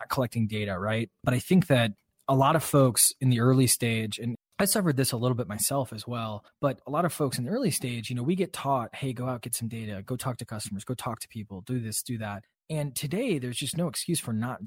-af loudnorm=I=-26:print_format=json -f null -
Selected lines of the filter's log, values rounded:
"input_i" : "-28.1",
"input_tp" : "-8.6",
"input_lra" : "9.3",
"input_thresh" : "-38.2",